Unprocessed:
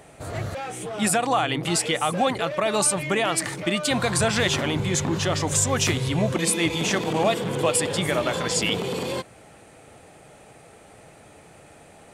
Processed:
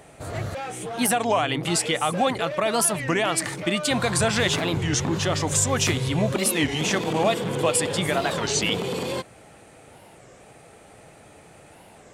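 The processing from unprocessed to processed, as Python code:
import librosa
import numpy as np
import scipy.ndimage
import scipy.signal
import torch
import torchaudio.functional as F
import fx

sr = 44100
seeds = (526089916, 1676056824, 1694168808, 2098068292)

y = fx.record_warp(x, sr, rpm=33.33, depth_cents=250.0)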